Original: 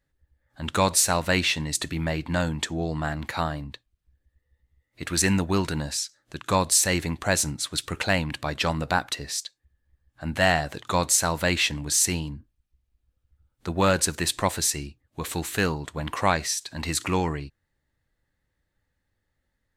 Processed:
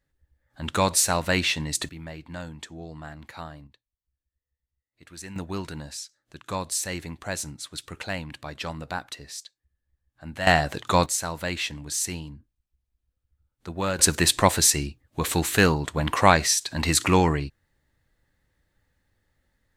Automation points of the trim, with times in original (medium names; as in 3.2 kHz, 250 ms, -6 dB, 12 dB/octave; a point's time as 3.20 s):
-0.5 dB
from 1.89 s -11.5 dB
from 3.67 s -18 dB
from 5.36 s -8 dB
from 10.47 s +3.5 dB
from 11.06 s -6 dB
from 13.99 s +5.5 dB